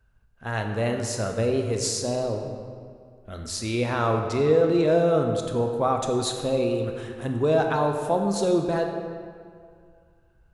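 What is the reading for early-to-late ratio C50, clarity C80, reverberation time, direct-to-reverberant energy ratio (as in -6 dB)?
5.0 dB, 6.0 dB, 2.2 s, 3.5 dB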